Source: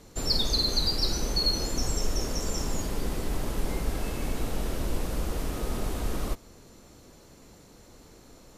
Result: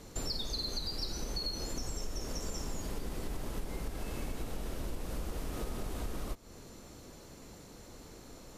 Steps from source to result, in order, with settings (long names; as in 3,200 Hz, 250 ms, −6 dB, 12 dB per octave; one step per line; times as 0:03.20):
downward compressor 6 to 1, threshold −35 dBFS, peak gain reduction 14.5 dB
level +1 dB